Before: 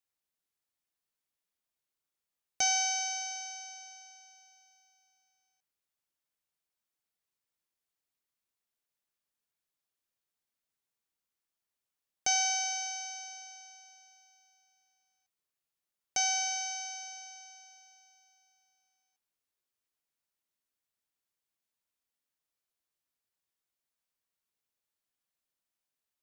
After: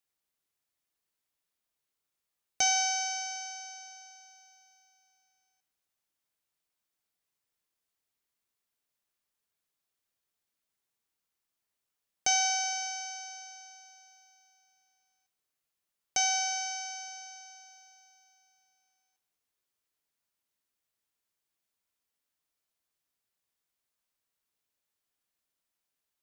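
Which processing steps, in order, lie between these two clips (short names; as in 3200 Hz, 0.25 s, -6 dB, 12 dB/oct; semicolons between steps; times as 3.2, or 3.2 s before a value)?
two-slope reverb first 0.92 s, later 2.4 s, DRR 10.5 dB; gain +2.5 dB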